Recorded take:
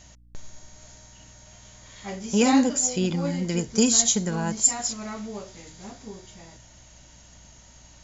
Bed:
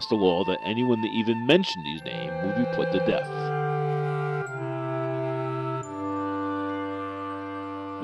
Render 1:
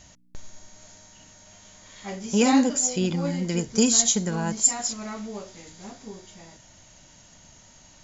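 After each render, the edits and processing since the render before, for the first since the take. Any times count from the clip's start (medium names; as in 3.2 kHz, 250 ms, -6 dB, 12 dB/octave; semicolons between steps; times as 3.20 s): de-hum 60 Hz, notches 2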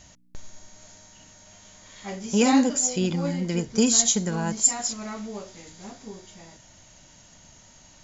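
3.33–3.87 s: distance through air 53 m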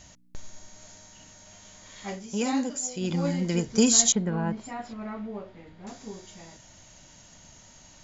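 2.09–3.17 s: dip -8 dB, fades 0.17 s; 4.12–5.87 s: distance through air 480 m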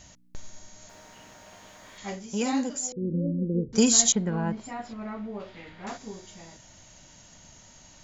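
0.89–1.98 s: overdrive pedal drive 30 dB, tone 1.1 kHz, clips at -35.5 dBFS; 2.92–3.73 s: Chebyshev low-pass 530 Hz, order 6; 5.39–5.96 s: peaking EQ 5 kHz -> 1.3 kHz +11.5 dB 2.8 oct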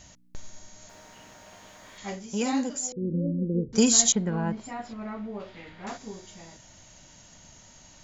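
no audible change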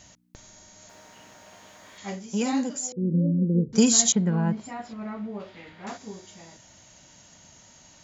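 high-pass 92 Hz 6 dB/octave; dynamic bell 170 Hz, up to +7 dB, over -44 dBFS, Q 1.9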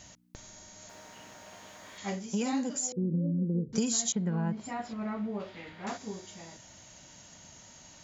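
compression 4:1, threshold -28 dBFS, peak gain reduction 12 dB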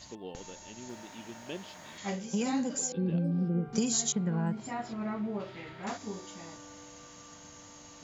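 add bed -22 dB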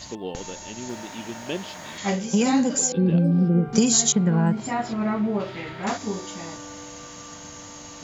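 trim +10.5 dB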